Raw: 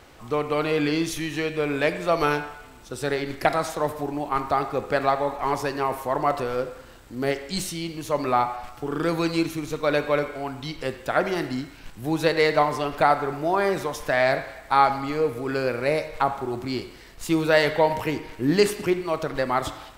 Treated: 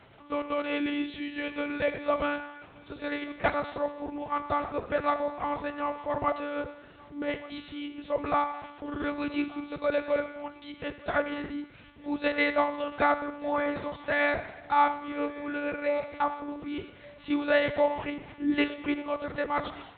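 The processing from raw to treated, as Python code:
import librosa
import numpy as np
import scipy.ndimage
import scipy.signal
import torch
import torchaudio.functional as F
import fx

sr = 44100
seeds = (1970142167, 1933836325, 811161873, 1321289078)

y = fx.lpc_monotone(x, sr, seeds[0], pitch_hz=290.0, order=10)
y = scipy.signal.sosfilt(scipy.signal.butter(2, 65.0, 'highpass', fs=sr, output='sos'), y)
y = y + 10.0 ** (-22.5 / 20.0) * np.pad(y, (int(1175 * sr / 1000.0), 0))[:len(y)]
y = y * librosa.db_to_amplitude(-4.5)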